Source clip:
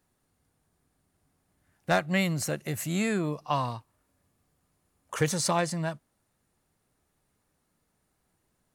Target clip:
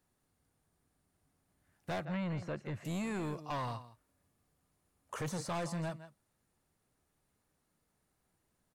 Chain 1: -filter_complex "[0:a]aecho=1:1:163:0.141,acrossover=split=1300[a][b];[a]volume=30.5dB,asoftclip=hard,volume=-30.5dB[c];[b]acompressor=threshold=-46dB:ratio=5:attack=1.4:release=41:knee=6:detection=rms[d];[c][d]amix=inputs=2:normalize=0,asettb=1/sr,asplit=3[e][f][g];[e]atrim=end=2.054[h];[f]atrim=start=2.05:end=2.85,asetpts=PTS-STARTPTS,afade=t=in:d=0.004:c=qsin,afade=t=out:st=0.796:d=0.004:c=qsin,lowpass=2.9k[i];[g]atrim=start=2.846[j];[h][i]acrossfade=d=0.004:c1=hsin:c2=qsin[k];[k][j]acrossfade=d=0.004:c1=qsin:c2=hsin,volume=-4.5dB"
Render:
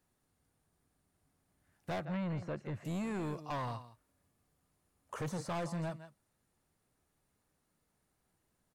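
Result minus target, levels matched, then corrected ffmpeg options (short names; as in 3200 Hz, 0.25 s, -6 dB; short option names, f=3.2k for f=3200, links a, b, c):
compressor: peak gain reduction +5 dB
-filter_complex "[0:a]aecho=1:1:163:0.141,acrossover=split=1300[a][b];[a]volume=30.5dB,asoftclip=hard,volume=-30.5dB[c];[b]acompressor=threshold=-40dB:ratio=5:attack=1.4:release=41:knee=6:detection=rms[d];[c][d]amix=inputs=2:normalize=0,asettb=1/sr,asplit=3[e][f][g];[e]atrim=end=2.054[h];[f]atrim=start=2.05:end=2.85,asetpts=PTS-STARTPTS,afade=t=in:d=0.004:c=qsin,afade=t=out:st=0.796:d=0.004:c=qsin,lowpass=2.9k[i];[g]atrim=start=2.846[j];[h][i]acrossfade=d=0.004:c1=hsin:c2=qsin[k];[k][j]acrossfade=d=0.004:c1=qsin:c2=hsin,volume=-4.5dB"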